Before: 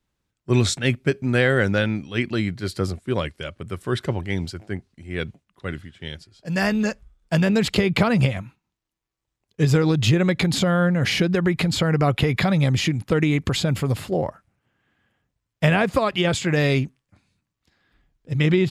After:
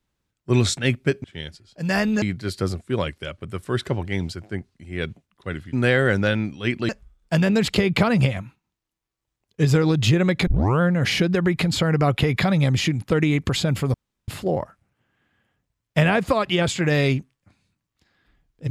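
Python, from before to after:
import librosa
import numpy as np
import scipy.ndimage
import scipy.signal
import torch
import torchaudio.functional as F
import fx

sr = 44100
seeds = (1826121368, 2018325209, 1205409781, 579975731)

y = fx.edit(x, sr, fx.swap(start_s=1.24, length_s=1.16, other_s=5.91, other_length_s=0.98),
    fx.tape_start(start_s=10.47, length_s=0.34),
    fx.insert_room_tone(at_s=13.94, length_s=0.34), tone=tone)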